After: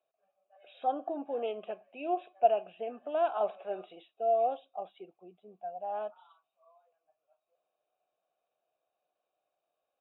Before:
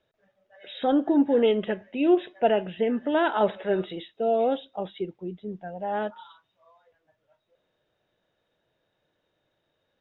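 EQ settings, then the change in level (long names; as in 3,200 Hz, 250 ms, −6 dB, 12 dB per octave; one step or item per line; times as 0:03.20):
formant filter a
+1.5 dB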